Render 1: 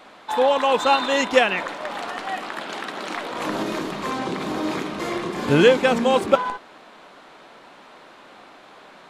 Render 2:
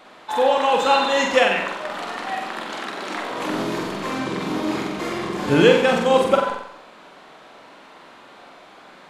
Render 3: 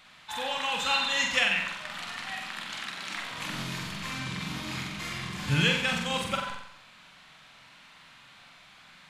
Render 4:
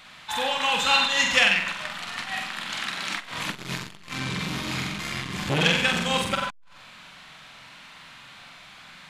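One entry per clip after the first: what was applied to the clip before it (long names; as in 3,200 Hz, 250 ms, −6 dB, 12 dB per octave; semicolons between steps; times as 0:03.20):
flutter between parallel walls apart 7.8 metres, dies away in 0.66 s; level −1 dB
drawn EQ curve 140 Hz 0 dB, 380 Hz −24 dB, 2,400 Hz −2 dB
saturating transformer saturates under 1,800 Hz; level +7 dB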